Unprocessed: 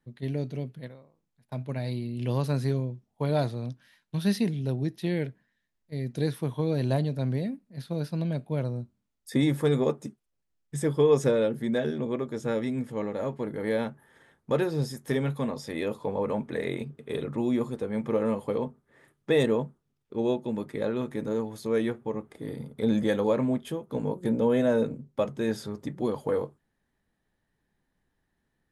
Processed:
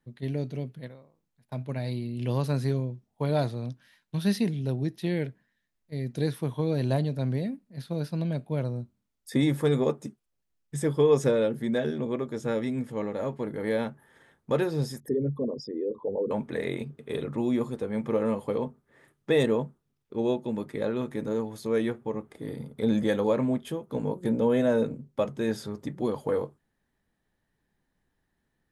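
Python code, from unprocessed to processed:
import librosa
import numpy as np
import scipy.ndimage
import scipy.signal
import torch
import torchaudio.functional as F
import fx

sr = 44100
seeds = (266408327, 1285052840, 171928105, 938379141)

y = fx.envelope_sharpen(x, sr, power=3.0, at=(15.0, 16.31))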